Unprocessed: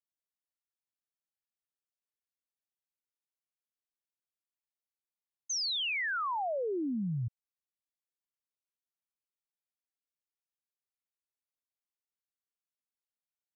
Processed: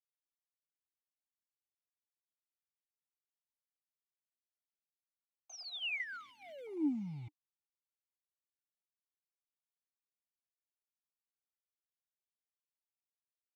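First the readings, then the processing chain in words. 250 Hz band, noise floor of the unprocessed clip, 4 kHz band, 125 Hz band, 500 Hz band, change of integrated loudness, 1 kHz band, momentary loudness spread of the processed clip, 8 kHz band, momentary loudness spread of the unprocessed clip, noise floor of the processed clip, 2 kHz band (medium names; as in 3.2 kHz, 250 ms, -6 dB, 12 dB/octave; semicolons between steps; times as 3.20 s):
-2.0 dB, under -85 dBFS, -9.5 dB, -11.0 dB, -13.0 dB, -7.0 dB, -21.0 dB, 16 LU, no reading, 6 LU, under -85 dBFS, -7.0 dB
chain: send-on-delta sampling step -45 dBFS; comb 1.4 ms, depth 49%; stepped vowel filter 1.5 Hz; trim +8 dB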